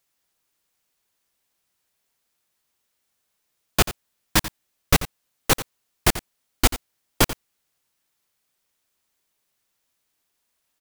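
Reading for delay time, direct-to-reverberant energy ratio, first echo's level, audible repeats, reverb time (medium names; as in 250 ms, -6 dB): 88 ms, no reverb, -14.0 dB, 1, no reverb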